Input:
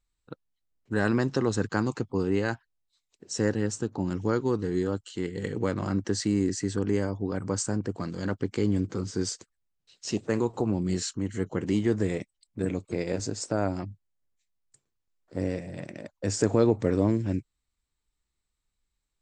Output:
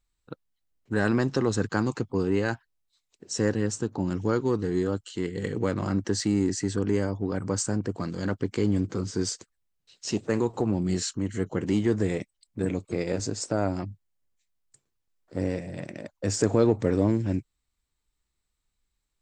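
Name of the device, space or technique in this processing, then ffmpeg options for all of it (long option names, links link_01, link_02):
parallel distortion: -filter_complex "[0:a]asplit=2[link_01][link_02];[link_02]asoftclip=type=hard:threshold=-26dB,volume=-12.5dB[link_03];[link_01][link_03]amix=inputs=2:normalize=0"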